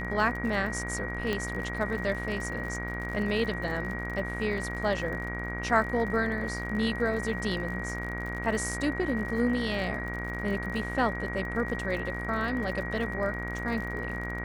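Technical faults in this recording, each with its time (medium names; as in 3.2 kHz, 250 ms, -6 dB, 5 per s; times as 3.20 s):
buzz 60 Hz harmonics 39 -36 dBFS
crackle 64 per s -37 dBFS
whine 1.9 kHz -36 dBFS
1.33 s: pop -16 dBFS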